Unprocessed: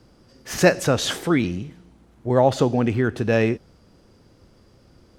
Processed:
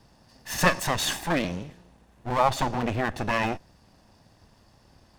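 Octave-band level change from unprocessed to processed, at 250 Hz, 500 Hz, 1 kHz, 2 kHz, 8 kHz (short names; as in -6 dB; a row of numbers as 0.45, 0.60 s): -9.0, -9.5, +1.0, -1.5, -1.5 dB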